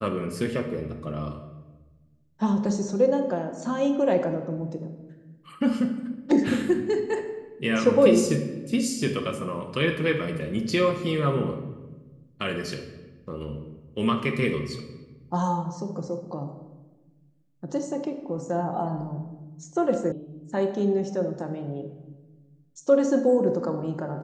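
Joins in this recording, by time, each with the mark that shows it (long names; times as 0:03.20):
0:20.12: cut off before it has died away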